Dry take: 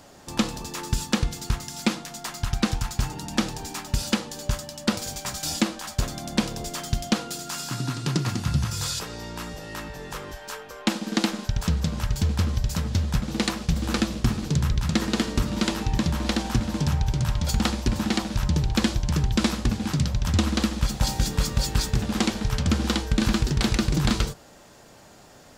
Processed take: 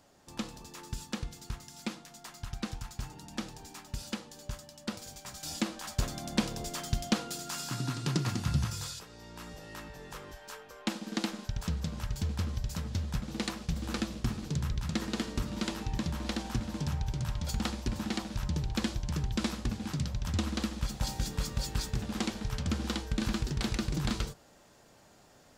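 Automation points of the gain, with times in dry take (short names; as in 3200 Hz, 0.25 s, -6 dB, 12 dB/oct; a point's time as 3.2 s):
5.27 s -13.5 dB
5.89 s -5.5 dB
8.65 s -5.5 dB
9.06 s -16 dB
9.52 s -9.5 dB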